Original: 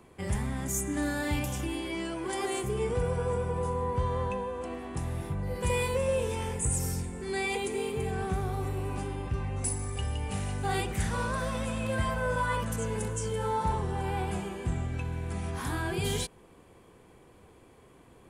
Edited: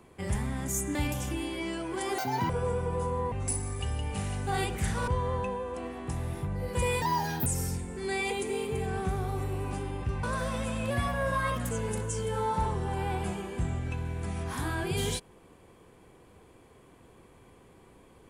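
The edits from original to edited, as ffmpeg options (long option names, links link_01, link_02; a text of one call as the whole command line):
ffmpeg -i in.wav -filter_complex "[0:a]asplit=11[link_01][link_02][link_03][link_04][link_05][link_06][link_07][link_08][link_09][link_10][link_11];[link_01]atrim=end=0.952[link_12];[link_02]atrim=start=1.268:end=2.504[link_13];[link_03]atrim=start=2.5:end=3.13,asetpts=PTS-STARTPTS,asetrate=87759,aresample=44100,atrim=end_sample=13961,asetpts=PTS-STARTPTS[link_14];[link_04]atrim=start=3.126:end=3.952[link_15];[link_05]atrim=start=9.478:end=11.242[link_16];[link_06]atrim=start=3.948:end=5.894[link_17];[link_07]atrim=start=5.89:end=6.71,asetpts=PTS-STARTPTS,asetrate=81144,aresample=44100,atrim=end_sample=19653,asetpts=PTS-STARTPTS[link_18];[link_08]atrim=start=6.706:end=9.482[link_19];[link_09]atrim=start=11.238:end=11.914[link_20];[link_10]atrim=start=11.91:end=12.78,asetpts=PTS-STARTPTS,asetrate=47628,aresample=44100[link_21];[link_11]atrim=start=12.776[link_22];[link_12][link_13]acrossfade=duration=0.004:curve1=hsin:curve2=hsin[link_23];[link_23][link_14]acrossfade=duration=0.004:curve1=hsin:curve2=hsin[link_24];[link_24][link_15]acrossfade=duration=0.004:curve1=hsin:curve2=hsin[link_25];[link_25][link_16]acrossfade=duration=0.004:curve1=hsin:curve2=hsin[link_26];[link_26][link_17]acrossfade=duration=0.004:curve1=hsin:curve2=hsin[link_27];[link_27][link_18]acrossfade=duration=0.004:curve1=hsin:curve2=hsin[link_28];[link_28][link_19]acrossfade=duration=0.004:curve1=hsin:curve2=hsin[link_29];[link_29][link_20]acrossfade=duration=0.004:curve1=hsin:curve2=hsin[link_30];[link_30][link_21]acrossfade=duration=0.004:curve1=hsin:curve2=hsin[link_31];[link_31][link_22]acrossfade=duration=0.004:curve1=hsin:curve2=hsin" out.wav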